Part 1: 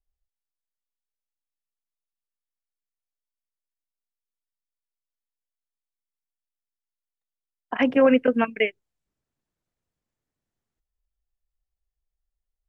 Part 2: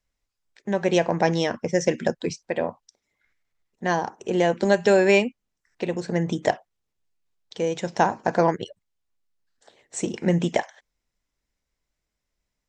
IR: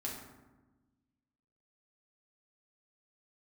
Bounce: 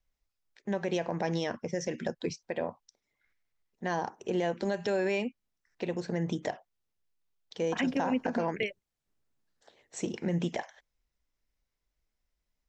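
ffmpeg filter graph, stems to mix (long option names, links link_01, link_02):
-filter_complex "[0:a]acrossover=split=300|3000[link_01][link_02][link_03];[link_02]acompressor=threshold=-34dB:ratio=2[link_04];[link_01][link_04][link_03]amix=inputs=3:normalize=0,volume=-1dB[link_05];[1:a]lowpass=frequency=6900:width=0.5412,lowpass=frequency=6900:width=1.3066,volume=-5.5dB,asplit=2[link_06][link_07];[link_07]apad=whole_len=559405[link_08];[link_05][link_08]sidechaincompress=threshold=-26dB:ratio=8:attack=16:release=284[link_09];[link_09][link_06]amix=inputs=2:normalize=0,alimiter=limit=-20.5dB:level=0:latency=1:release=80"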